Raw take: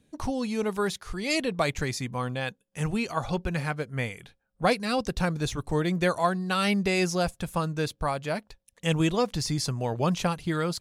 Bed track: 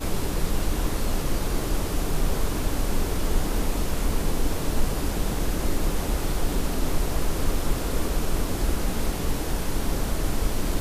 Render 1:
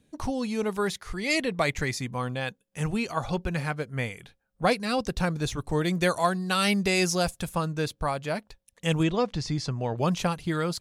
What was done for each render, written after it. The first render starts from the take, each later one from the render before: 0.87–1.95 s: peaking EQ 2 kHz +6.5 dB 0.28 oct; 5.81–7.49 s: treble shelf 3.8 kHz +7 dB; 9.03–9.98 s: distance through air 98 m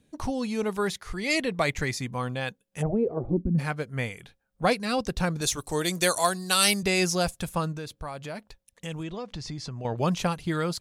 2.81–3.58 s: resonant low-pass 720 Hz -> 210 Hz, resonance Q 8.5; 5.41–6.83 s: tone controls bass -7 dB, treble +13 dB; 7.72–9.85 s: compression 3:1, threshold -34 dBFS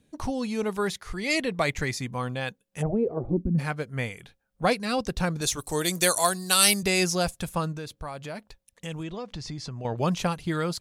5.59–7.04 s: treble shelf 8.3 kHz +8 dB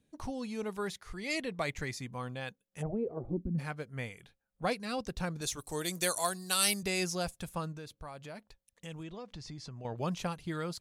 trim -9 dB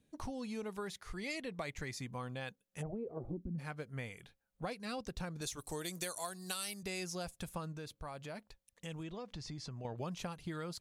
compression 6:1, threshold -38 dBFS, peak gain reduction 14.5 dB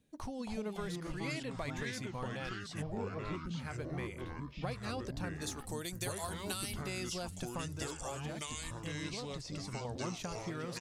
ever faster or slower copies 222 ms, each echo -4 st, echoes 3; delay 682 ms -23.5 dB

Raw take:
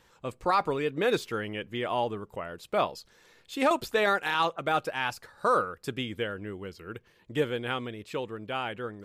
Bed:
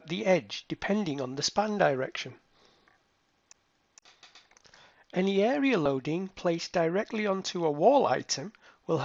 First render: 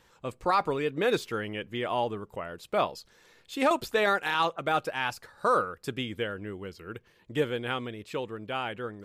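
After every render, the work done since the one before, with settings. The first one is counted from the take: no audible change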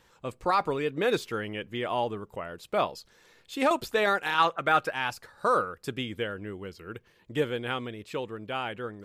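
4.38–4.92 s: peaking EQ 1.6 kHz +7.5 dB 1.2 oct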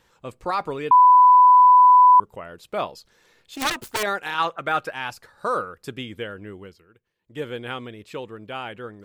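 0.91–2.20 s: bleep 997 Hz -8.5 dBFS; 3.55–4.03 s: self-modulated delay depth 0.82 ms; 6.59–7.52 s: dip -17 dB, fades 0.29 s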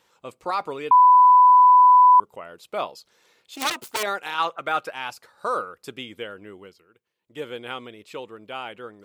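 high-pass 370 Hz 6 dB/octave; peaking EQ 1.7 kHz -5.5 dB 0.27 oct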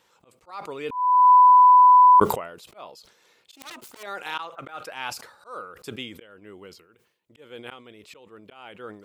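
slow attack 407 ms; decay stretcher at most 89 dB/s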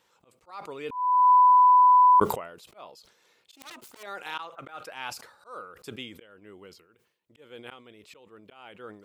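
trim -4 dB

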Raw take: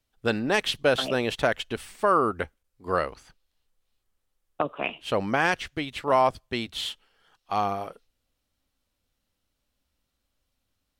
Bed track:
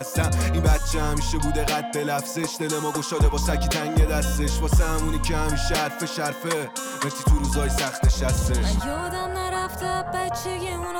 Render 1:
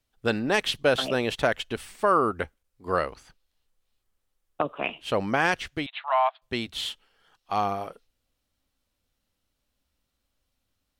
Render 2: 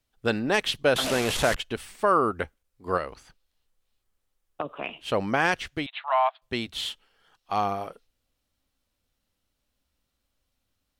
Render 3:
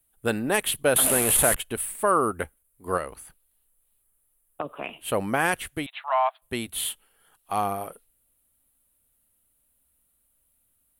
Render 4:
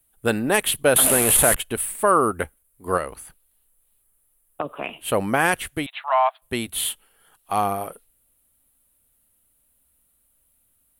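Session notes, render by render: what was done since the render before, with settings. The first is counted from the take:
5.86–6.42 s: Chebyshev band-pass 670–3900 Hz, order 5
0.96–1.56 s: one-bit delta coder 64 kbps, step -22 dBFS; 2.97–5.08 s: compression 1.5:1, threshold -34 dBFS
resonant high shelf 7.6 kHz +13.5 dB, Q 3
trim +4 dB; peak limiter -3 dBFS, peak gain reduction 1 dB

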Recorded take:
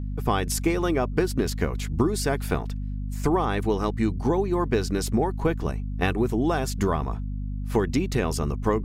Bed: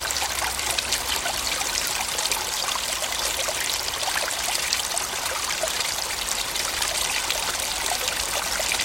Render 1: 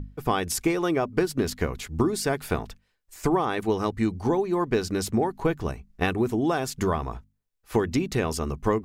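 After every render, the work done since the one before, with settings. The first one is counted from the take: hum notches 50/100/150/200/250 Hz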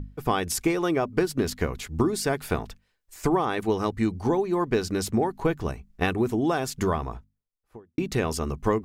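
6.89–7.98 s: studio fade out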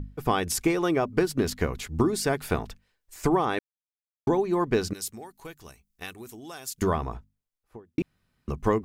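3.59–4.27 s: mute; 4.93–6.82 s: pre-emphasis filter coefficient 0.9; 8.02–8.48 s: room tone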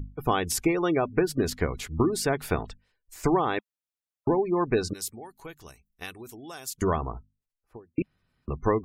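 spectral gate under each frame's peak -30 dB strong; peaking EQ 210 Hz -4 dB 0.23 oct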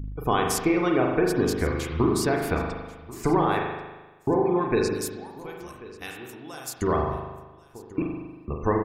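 delay 1088 ms -19.5 dB; spring tank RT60 1.2 s, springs 39 ms, chirp 60 ms, DRR 0.5 dB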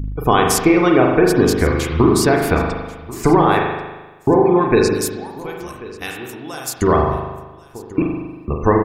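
trim +9.5 dB; peak limiter -2 dBFS, peak gain reduction 1.5 dB

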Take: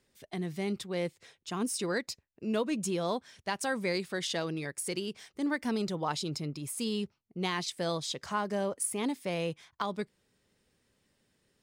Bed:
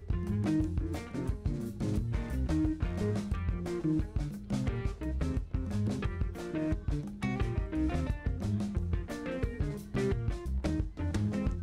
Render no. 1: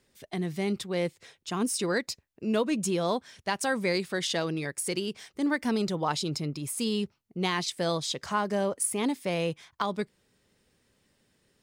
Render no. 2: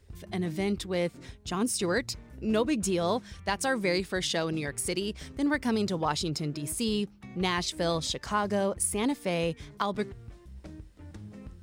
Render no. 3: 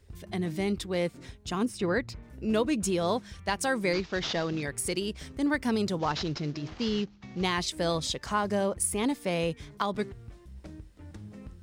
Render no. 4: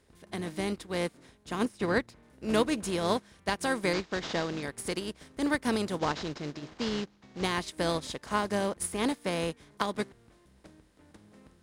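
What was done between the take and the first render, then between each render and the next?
trim +4 dB
add bed -13 dB
1.65–2.23 s: tone controls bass +2 dB, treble -14 dB; 3.93–4.63 s: CVSD coder 32 kbps; 5.99–7.44 s: CVSD coder 32 kbps
spectral levelling over time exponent 0.6; upward expansion 2.5:1, over -35 dBFS

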